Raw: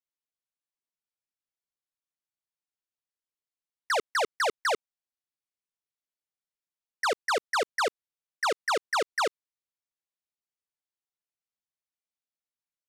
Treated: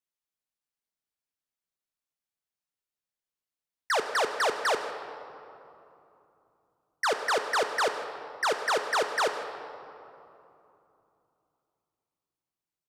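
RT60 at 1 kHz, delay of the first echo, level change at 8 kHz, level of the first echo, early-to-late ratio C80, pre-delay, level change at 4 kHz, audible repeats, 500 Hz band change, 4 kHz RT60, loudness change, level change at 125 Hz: 2.9 s, 157 ms, +0.5 dB, −18.5 dB, 8.0 dB, 5 ms, +0.5 dB, 1, +1.5 dB, 1.6 s, +0.5 dB, can't be measured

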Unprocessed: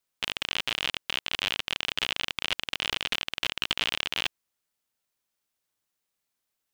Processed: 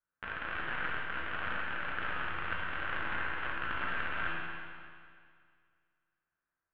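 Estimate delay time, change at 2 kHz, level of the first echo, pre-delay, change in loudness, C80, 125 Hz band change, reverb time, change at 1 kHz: no echo audible, −1.5 dB, no echo audible, 12 ms, −7.5 dB, −0.5 dB, +0.5 dB, 2.1 s, +2.0 dB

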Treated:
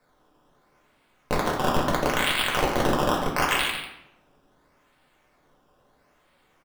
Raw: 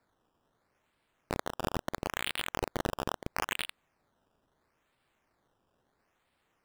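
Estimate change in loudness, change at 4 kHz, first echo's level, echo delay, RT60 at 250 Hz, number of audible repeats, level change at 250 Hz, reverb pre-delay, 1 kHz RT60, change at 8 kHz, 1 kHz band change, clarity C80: +11.5 dB, +11.0 dB, −7.5 dB, 144 ms, 0.95 s, 1, +12.5 dB, 4 ms, 0.75 s, +10.0 dB, +12.5 dB, 4.5 dB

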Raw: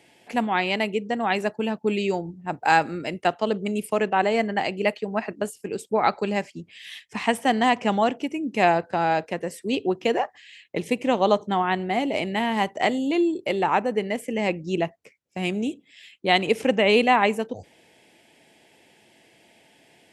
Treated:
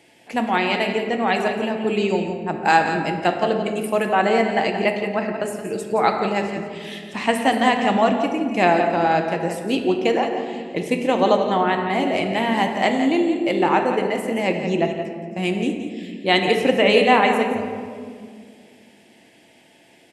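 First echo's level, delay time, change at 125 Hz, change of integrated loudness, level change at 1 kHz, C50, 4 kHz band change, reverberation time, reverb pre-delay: −9.5 dB, 172 ms, +4.0 dB, +3.5 dB, +3.5 dB, 4.5 dB, +3.5 dB, 2.1 s, 3 ms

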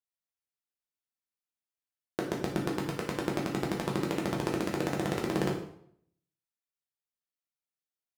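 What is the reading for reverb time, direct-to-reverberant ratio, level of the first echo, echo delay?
0.65 s, −2.0 dB, no echo audible, no echo audible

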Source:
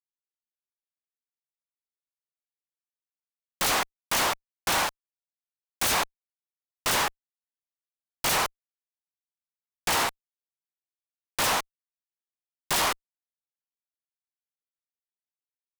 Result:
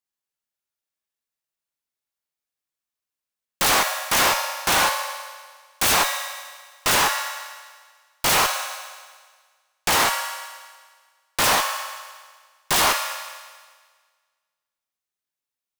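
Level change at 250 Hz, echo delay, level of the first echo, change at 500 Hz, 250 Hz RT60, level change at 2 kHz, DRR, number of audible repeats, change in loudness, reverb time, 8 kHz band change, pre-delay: +5.0 dB, no echo audible, no echo audible, +6.0 dB, 1.6 s, +7.0 dB, 2.5 dB, no echo audible, +6.0 dB, 1.6 s, +7.0 dB, 4 ms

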